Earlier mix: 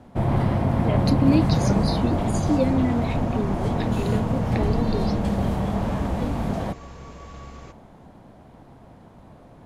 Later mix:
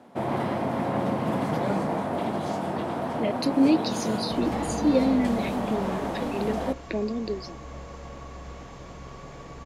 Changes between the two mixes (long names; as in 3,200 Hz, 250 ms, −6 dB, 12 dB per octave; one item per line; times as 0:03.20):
speech: entry +2.35 s
first sound: add high-pass filter 270 Hz 12 dB per octave
second sound: entry +2.80 s